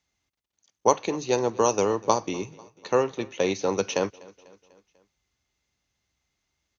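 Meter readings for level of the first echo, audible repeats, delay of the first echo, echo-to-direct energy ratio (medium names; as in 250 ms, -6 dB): -23.0 dB, 3, 247 ms, -21.5 dB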